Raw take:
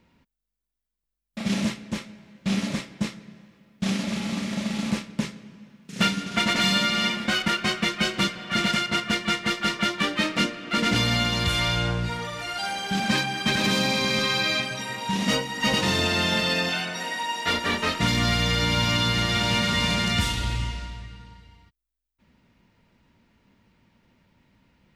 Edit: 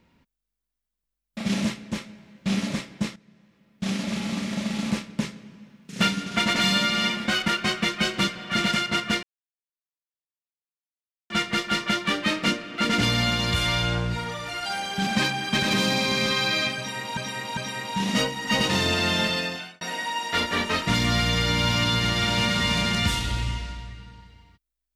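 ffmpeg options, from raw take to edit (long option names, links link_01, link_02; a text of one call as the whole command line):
ffmpeg -i in.wav -filter_complex "[0:a]asplit=6[link_01][link_02][link_03][link_04][link_05][link_06];[link_01]atrim=end=3.16,asetpts=PTS-STARTPTS,afade=type=out:start_time=3.156:duration=0.004:curve=hsin:silence=0.199526[link_07];[link_02]atrim=start=3.16:end=9.23,asetpts=PTS-STARTPTS,afade=type=in:duration=0.97:silence=0.199526,afade=type=out:start_time=6.066:duration=0.004:curve=hsin,apad=pad_dur=2.07[link_08];[link_03]atrim=start=9.23:end=15.102,asetpts=PTS-STARTPTS,afade=type=in:duration=0.004:curve=hsin[link_09];[link_04]atrim=start=14.698:end=15.102[link_10];[link_05]atrim=start=14.698:end=16.94,asetpts=PTS-STARTPTS,afade=type=out:start_time=1.662:duration=0.58[link_11];[link_06]atrim=start=16.94,asetpts=PTS-STARTPTS,afade=type=in:duration=0.004:curve=hsin[link_12];[link_07][link_08][link_09]concat=n=3:v=0:a=1[link_13];[link_13][link_10]acrossfade=duration=0.004:curve1=hsin:curve2=hsin[link_14];[link_11][link_12]concat=n=2:v=0:a=1[link_15];[link_14][link_15]acrossfade=duration=0.004:curve1=hsin:curve2=hsin" out.wav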